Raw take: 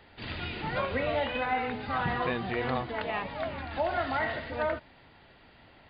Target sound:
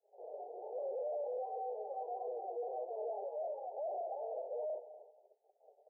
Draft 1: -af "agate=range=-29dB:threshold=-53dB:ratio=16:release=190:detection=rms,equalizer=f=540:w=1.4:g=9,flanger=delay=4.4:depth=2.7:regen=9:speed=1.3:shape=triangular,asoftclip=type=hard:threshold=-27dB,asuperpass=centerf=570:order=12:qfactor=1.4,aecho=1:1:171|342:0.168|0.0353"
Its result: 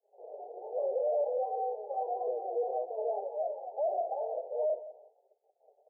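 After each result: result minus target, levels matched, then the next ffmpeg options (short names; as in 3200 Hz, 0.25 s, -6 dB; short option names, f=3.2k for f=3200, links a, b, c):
echo 70 ms early; hard clip: distortion -6 dB
-af "agate=range=-29dB:threshold=-53dB:ratio=16:release=190:detection=rms,equalizer=f=540:w=1.4:g=9,flanger=delay=4.4:depth=2.7:regen=9:speed=1.3:shape=triangular,asoftclip=type=hard:threshold=-27dB,asuperpass=centerf=570:order=12:qfactor=1.4,aecho=1:1:241|482:0.168|0.0353"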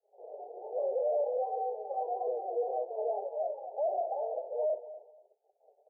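hard clip: distortion -6 dB
-af "agate=range=-29dB:threshold=-53dB:ratio=16:release=190:detection=rms,equalizer=f=540:w=1.4:g=9,flanger=delay=4.4:depth=2.7:regen=9:speed=1.3:shape=triangular,asoftclip=type=hard:threshold=-37dB,asuperpass=centerf=570:order=12:qfactor=1.4,aecho=1:1:241|482:0.168|0.0353"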